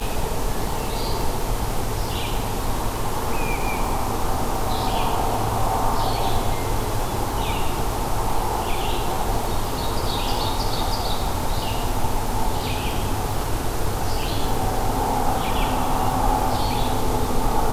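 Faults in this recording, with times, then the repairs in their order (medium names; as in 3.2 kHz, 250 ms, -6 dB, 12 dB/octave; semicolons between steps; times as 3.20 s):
crackle 35 per s -26 dBFS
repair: de-click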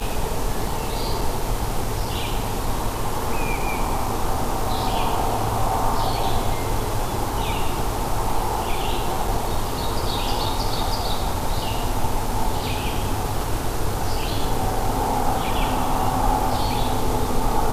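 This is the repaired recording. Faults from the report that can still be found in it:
nothing left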